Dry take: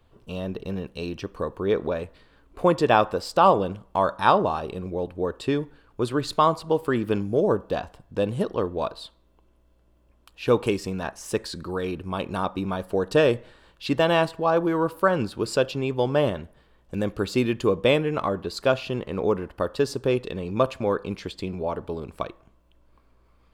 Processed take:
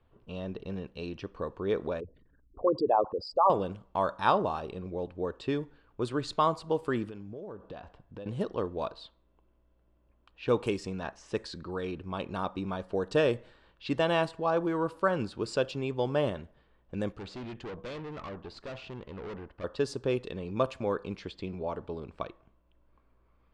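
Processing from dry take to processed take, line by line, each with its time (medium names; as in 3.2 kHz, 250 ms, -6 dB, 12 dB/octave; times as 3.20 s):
2.00–3.50 s: resonances exaggerated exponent 3
7.06–8.26 s: compression, threshold -33 dBFS
17.12–19.64 s: valve stage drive 31 dB, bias 0.6
whole clip: low-pass 9.5 kHz 24 dB/octave; level-controlled noise filter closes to 2.8 kHz, open at -19.5 dBFS; trim -6.5 dB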